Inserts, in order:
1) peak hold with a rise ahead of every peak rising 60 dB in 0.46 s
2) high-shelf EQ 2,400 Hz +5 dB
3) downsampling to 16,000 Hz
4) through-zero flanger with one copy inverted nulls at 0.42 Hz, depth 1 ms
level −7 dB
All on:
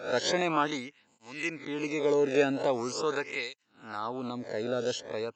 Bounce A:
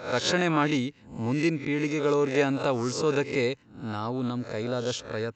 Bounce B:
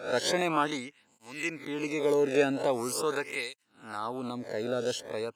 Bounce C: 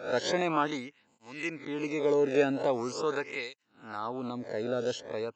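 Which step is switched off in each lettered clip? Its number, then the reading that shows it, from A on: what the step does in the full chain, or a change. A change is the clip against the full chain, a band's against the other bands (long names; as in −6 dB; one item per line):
4, 125 Hz band +9.0 dB
3, 8 kHz band +3.0 dB
2, 8 kHz band −4.0 dB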